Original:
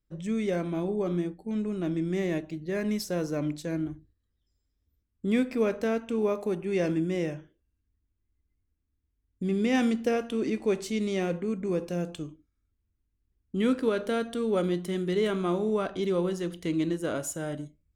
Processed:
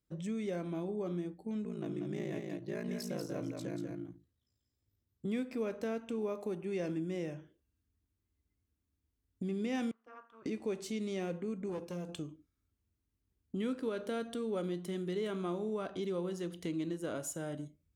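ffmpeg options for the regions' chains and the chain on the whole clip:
ffmpeg -i in.wav -filter_complex "[0:a]asettb=1/sr,asplit=3[link_01][link_02][link_03];[link_01]atrim=end=1.644[link_04];[link_02]atrim=start=1.64:end=5.26,asetpts=PTS-STARTPTS,afade=type=in:duration=0.004:curve=qsin,afade=type=out:start_time=3.616:duration=0.004:curve=qsin,aeval=exprs='val(0)*sin(2*PI*28*n/s)':channel_layout=same,aecho=1:1:189:0.562,atrim=end_sample=159642[link_05];[link_03]atrim=start=5.256[link_06];[link_04][link_05]acrossfade=duration=0.004:curve1=hsin:curve2=qsin[link_07];[link_07][link_06]acrossfade=duration=0.004:curve1=qsin:curve2=hsin,asettb=1/sr,asplit=3[link_08][link_09][link_10];[link_08]atrim=end=9.914[link_11];[link_09]atrim=start=9.91:end=10.46,asetpts=PTS-STARTPTS,afade=type=in:duration=0.004:curve=qsin,afade=type=out:start_time=0.546:duration=0.004:curve=qsin,bandpass=frequency=1200:width_type=q:width=8.3,tremolo=f=220:d=0.857[link_12];[link_10]atrim=start=10.456[link_13];[link_11][link_12]acrossfade=duration=0.004:curve1=hsin:curve2=qsin[link_14];[link_14][link_13]acrossfade=duration=0.004:curve1=qsin:curve2=hsin,asettb=1/sr,asplit=3[link_15][link_16][link_17];[link_15]atrim=end=11.694[link_18];[link_16]atrim=start=11.69:end=12.09,asetpts=PTS-STARTPTS,afade=type=in:duration=0.004:curve=qsin,afade=type=out:start_time=0.396:duration=0.004:curve=qsin,highpass=51,aeval=exprs='(tanh(15.8*val(0)+0.65)-tanh(0.65))/15.8':channel_layout=same[link_19];[link_17]atrim=start=12.086[link_20];[link_18][link_19]acrossfade=duration=0.004:curve1=hsin:curve2=qsin[link_21];[link_21][link_20]acrossfade=duration=0.004:curve1=qsin:curve2=hsin,highpass=74,equalizer=frequency=1900:width=1.5:gain=-2,acompressor=threshold=-41dB:ratio=2" out.wav

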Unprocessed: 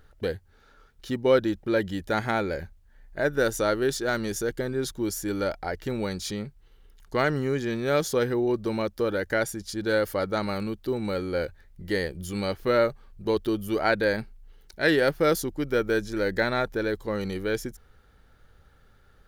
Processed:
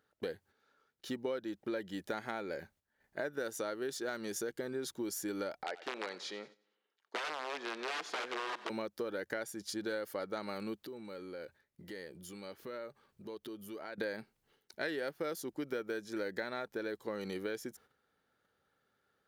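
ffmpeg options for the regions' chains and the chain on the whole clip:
ffmpeg -i in.wav -filter_complex "[0:a]asettb=1/sr,asplit=3[link_01][link_02][link_03];[link_01]atrim=end=5.634[link_04];[link_02]atrim=start=5.63:end=8.7,asetpts=PTS-STARTPTS,afade=type=in:duration=0.004:curve=qsin,afade=type=out:start_time=3.066:duration=0.004:curve=qsin,aeval=exprs='(mod(10.6*val(0)+1,2)-1)/10.6':channel_layout=same,highpass=480,lowpass=3800,aecho=1:1:91|182|273|364|455:0.119|0.0642|0.0347|0.0187|0.0101,atrim=end_sample=135387[link_05];[link_03]atrim=start=8.696[link_06];[link_04][link_05]acrossfade=duration=0.004:curve1=hsin:curve2=qsin[link_07];[link_07][link_06]acrossfade=duration=0.004:curve1=qsin:curve2=hsin,asettb=1/sr,asplit=3[link_08][link_09][link_10];[link_08]atrim=end=10.784[link_11];[link_09]atrim=start=10.78:end=13.98,asetpts=PTS-STARTPTS,afade=type=in:duration=0.004:curve=qsin,afade=type=out:start_time=3.196:duration=0.004:curve=qsin,acompressor=threshold=-38dB:ratio=6:attack=3.2:release=140:knee=1:detection=peak,bandreject=frequency=740:width=14[link_12];[link_10]atrim=start=13.976[link_13];[link_11][link_12]acrossfade=duration=0.004:curve1=hsin:curve2=qsin[link_14];[link_14][link_13]acrossfade=duration=0.004:curve1=qsin:curve2=hsin,agate=range=-10dB:threshold=-50dB:ratio=16:detection=peak,highpass=220,acompressor=threshold=-31dB:ratio=6,volume=-4dB" out.wav

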